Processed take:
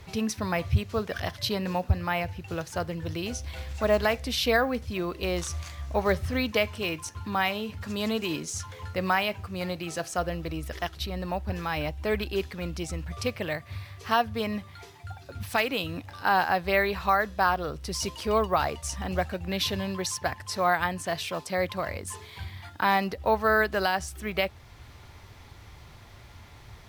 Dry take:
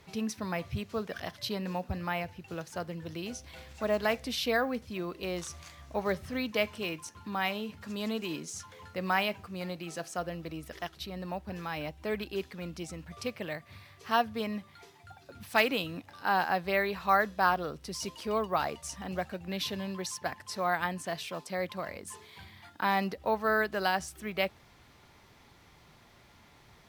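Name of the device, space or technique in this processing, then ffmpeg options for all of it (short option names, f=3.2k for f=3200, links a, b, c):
car stereo with a boomy subwoofer: -af "lowshelf=f=130:t=q:w=1.5:g=8,alimiter=limit=-18dB:level=0:latency=1:release=444,volume=6.5dB"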